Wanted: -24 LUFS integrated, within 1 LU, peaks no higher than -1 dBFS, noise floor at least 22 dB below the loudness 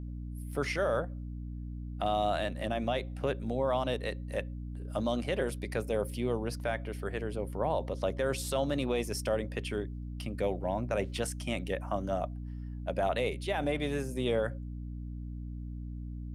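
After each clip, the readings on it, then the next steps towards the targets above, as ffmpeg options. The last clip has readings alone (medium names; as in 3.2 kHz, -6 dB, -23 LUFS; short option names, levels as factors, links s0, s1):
hum 60 Hz; highest harmonic 300 Hz; hum level -37 dBFS; loudness -34.0 LUFS; peak level -19.0 dBFS; loudness target -24.0 LUFS
-> -af "bandreject=f=60:t=h:w=4,bandreject=f=120:t=h:w=4,bandreject=f=180:t=h:w=4,bandreject=f=240:t=h:w=4,bandreject=f=300:t=h:w=4"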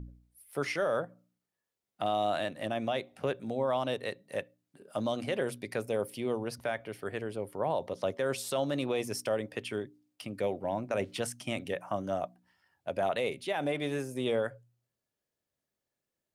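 hum not found; loudness -34.0 LUFS; peak level -19.5 dBFS; loudness target -24.0 LUFS
-> -af "volume=3.16"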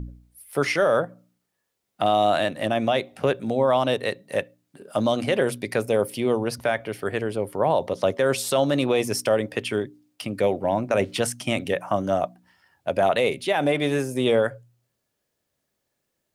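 loudness -24.0 LUFS; peak level -9.5 dBFS; noise floor -78 dBFS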